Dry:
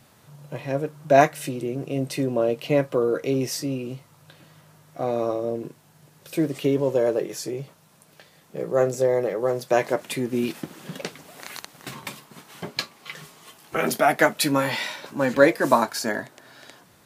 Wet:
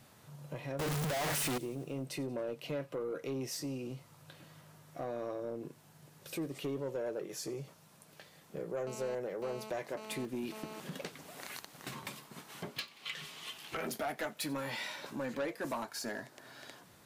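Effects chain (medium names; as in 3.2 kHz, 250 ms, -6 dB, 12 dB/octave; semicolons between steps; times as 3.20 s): 0.79–1.58 s: one-bit comparator; 12.76–13.77 s: peaking EQ 3 kHz +12.5 dB 1.5 oct; compression 2:1, threshold -35 dBFS, peak gain reduction 14 dB; saturation -26 dBFS, distortion -14 dB; feedback echo behind a high-pass 91 ms, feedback 62%, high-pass 2.9 kHz, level -20.5 dB; 8.87–10.80 s: mobile phone buzz -43 dBFS; trim -4.5 dB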